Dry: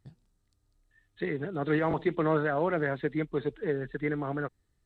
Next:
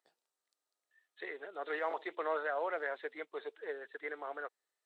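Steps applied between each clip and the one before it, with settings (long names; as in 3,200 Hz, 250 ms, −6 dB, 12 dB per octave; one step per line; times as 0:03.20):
high-pass filter 500 Hz 24 dB per octave
level −5 dB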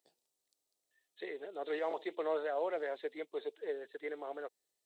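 parametric band 1,400 Hz −15 dB 1.6 octaves
level +6 dB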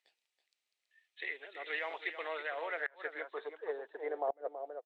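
single-tap delay 327 ms −10 dB
band-pass filter sweep 2,300 Hz → 630 Hz, 0:02.48–0:04.41
gate with flip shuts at −35 dBFS, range −27 dB
level +12 dB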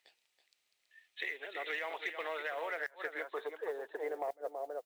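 noise that follows the level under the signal 30 dB
soft clipping −25 dBFS, distortion −23 dB
downward compressor 3 to 1, threshold −45 dBFS, peak gain reduction 10.5 dB
level +7.5 dB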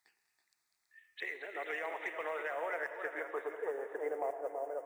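phaser swept by the level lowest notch 470 Hz, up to 4,100 Hz, full sweep at −44.5 dBFS
delay that swaps between a low-pass and a high-pass 110 ms, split 1,600 Hz, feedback 83%, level −13.5 dB
on a send at −11 dB: convolution reverb RT60 2.5 s, pre-delay 59 ms
on the sum: level +1 dB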